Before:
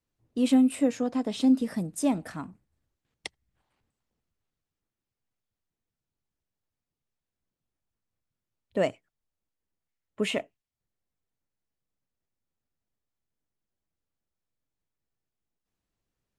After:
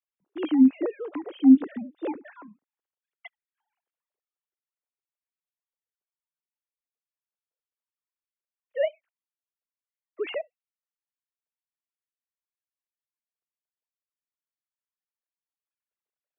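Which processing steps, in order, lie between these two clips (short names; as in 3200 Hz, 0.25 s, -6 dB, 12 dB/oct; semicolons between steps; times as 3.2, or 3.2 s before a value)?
sine-wave speech; gain +2.5 dB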